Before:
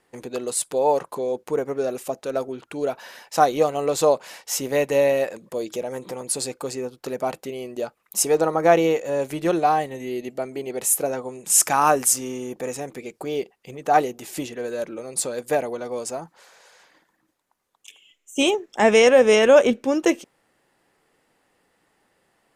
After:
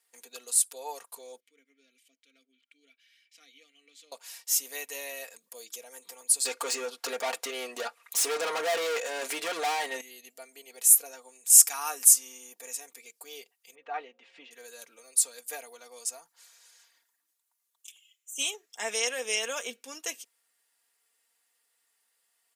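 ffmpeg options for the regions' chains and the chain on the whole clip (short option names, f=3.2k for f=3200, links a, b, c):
-filter_complex "[0:a]asettb=1/sr,asplit=3[a][b][c];[a]atrim=end=1.404[d];[b]atrim=start=1.4:end=4.12,asetpts=PTS-STARTPTS,afade=t=in:d=0.004:c=qsin,afade=t=out:st=2.716:d=0.004:c=qsin,acompressor=mode=upward:threshold=-34dB:ratio=2.5:attack=3.2:release=140:knee=2.83:detection=peak,asplit=3[e][f][g];[e]bandpass=f=270:t=q:w=8,volume=0dB[h];[f]bandpass=f=2.29k:t=q:w=8,volume=-6dB[i];[g]bandpass=f=3.01k:t=q:w=8,volume=-9dB[j];[h][i][j]amix=inputs=3:normalize=0,lowshelf=f=410:g=-10.5[k];[c]atrim=start=4.116[l];[d][k]acrossfade=d=0.004:c1=hsin:c2=qsin[m];[m][l]acrossfade=d=0.004:c1=qsin:c2=hsin,asettb=1/sr,asplit=3[n][o][p];[n]atrim=end=6.454[q];[o]atrim=start=6.45:end=10.01,asetpts=PTS-STARTPTS,afade=t=in:d=0.004:c=qsin,afade=t=out:st=3.556:d=0.004:c=qsin,lowpass=12k,asplit=2[r][s];[s]highpass=f=720:p=1,volume=34dB,asoftclip=type=tanh:threshold=-2dB[t];[r][t]amix=inputs=2:normalize=0,lowpass=f=1k:p=1,volume=-6dB[u];[p]atrim=start=10.006[v];[q][u]acrossfade=d=0.004:c1=hsin:c2=qsin[w];[w][v]acrossfade=d=0.004:c1=qsin:c2=hsin,asettb=1/sr,asplit=3[x][y][z];[x]atrim=end=13.754[aa];[y]atrim=start=13.75:end=14.51,asetpts=PTS-STARTPTS,afade=t=in:d=0.004:c=qsin,afade=t=out:st=0.756:d=0.004:c=qsin,lowpass=f=2.8k:w=0.5412,lowpass=f=2.8k:w=1.3066,aeval=exprs='val(0)+0.00355*sin(2*PI*530*n/s)':c=same[ab];[z]atrim=start=14.506[ac];[aa][ab]acrossfade=d=0.004:c1=hsin:c2=qsin[ad];[ad][ac]acrossfade=d=0.004:c1=qsin:c2=hsin,highpass=220,aderivative,aecho=1:1:4.3:0.63,volume=-1dB"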